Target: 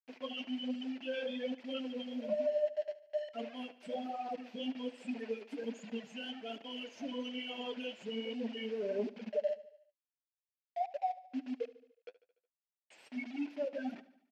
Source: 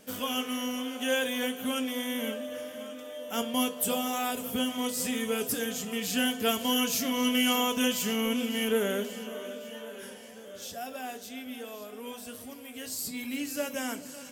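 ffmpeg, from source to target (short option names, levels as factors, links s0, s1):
-filter_complex "[0:a]aemphasis=mode=production:type=50fm,afftfilt=real='re*gte(hypot(re,im),0.112)':imag='im*gte(hypot(re,im),0.112)':win_size=1024:overlap=0.75,areverse,acompressor=threshold=0.00891:ratio=20,areverse,asoftclip=type=hard:threshold=0.01,asplit=2[s0][s1];[s1]adynamicsmooth=sensitivity=2.5:basefreq=640,volume=1.06[s2];[s0][s2]amix=inputs=2:normalize=0,acrusher=bits=8:mix=0:aa=0.000001,flanger=delay=1.5:depth=9.2:regen=35:speed=1.2:shape=triangular,highpass=310,equalizer=f=660:t=q:w=4:g=6,equalizer=f=1200:t=q:w=4:g=-9,equalizer=f=2600:t=q:w=4:g=5,equalizer=f=3800:t=q:w=4:g=-7,lowpass=f=4200:w=0.5412,lowpass=f=4200:w=1.3066,aecho=1:1:73|146|219|292|365:0.133|0.076|0.0433|0.0247|0.0141,volume=2.82"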